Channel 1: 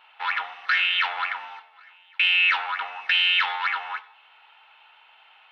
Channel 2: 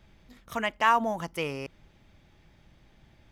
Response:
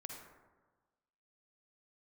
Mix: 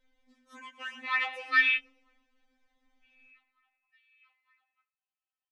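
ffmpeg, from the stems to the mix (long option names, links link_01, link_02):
-filter_complex "[0:a]adelay=850,volume=-0.5dB[link_01];[1:a]lowpass=frequency=9300:width=0.5412,lowpass=frequency=9300:width=1.3066,bandreject=frequency=50:width_type=h:width=6,bandreject=frequency=100:width_type=h:width=6,bandreject=frequency=150:width_type=h:width=6,bandreject=frequency=200:width_type=h:width=6,bandreject=frequency=250:width_type=h:width=6,volume=-10.5dB,asplit=3[link_02][link_03][link_04];[link_03]volume=-13.5dB[link_05];[link_04]apad=whole_len=280561[link_06];[link_01][link_06]sidechaingate=range=-43dB:threshold=-57dB:ratio=16:detection=peak[link_07];[link_05]aecho=0:1:119|238|357|476|595|714|833:1|0.51|0.26|0.133|0.0677|0.0345|0.0176[link_08];[link_07][link_02][link_08]amix=inputs=3:normalize=0,afftfilt=real='re*3.46*eq(mod(b,12),0)':imag='im*3.46*eq(mod(b,12),0)':win_size=2048:overlap=0.75"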